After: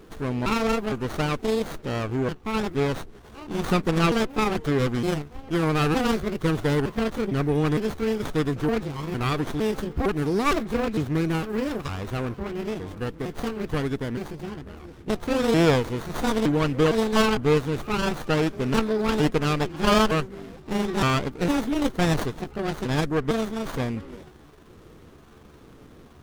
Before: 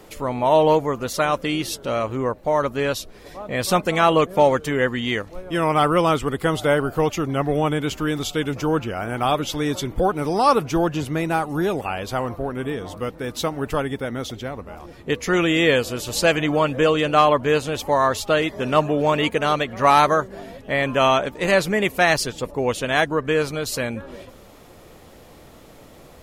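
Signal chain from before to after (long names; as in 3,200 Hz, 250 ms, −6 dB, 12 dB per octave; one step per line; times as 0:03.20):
pitch shifter gated in a rhythm +6.5 semitones, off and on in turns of 457 ms
flat-topped bell 710 Hz −11 dB 1 octave
windowed peak hold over 17 samples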